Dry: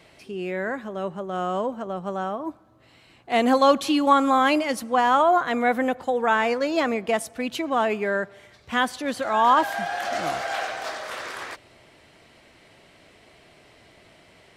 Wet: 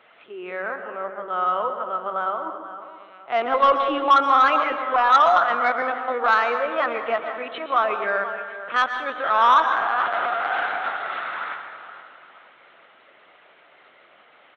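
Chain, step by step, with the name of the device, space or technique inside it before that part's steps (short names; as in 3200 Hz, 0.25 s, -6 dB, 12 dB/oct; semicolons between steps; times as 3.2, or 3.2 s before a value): 0.61–1.2 LPF 1500 Hz; high shelf 4400 Hz -2.5 dB; feedback echo 0.473 s, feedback 39%, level -13.5 dB; talking toy (LPC vocoder at 8 kHz pitch kept; HPF 430 Hz 12 dB/oct; bell 1300 Hz +11.5 dB 0.5 oct; soft clip -8 dBFS, distortion -16 dB); plate-style reverb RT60 1.2 s, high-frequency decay 0.55×, pre-delay 0.105 s, DRR 7 dB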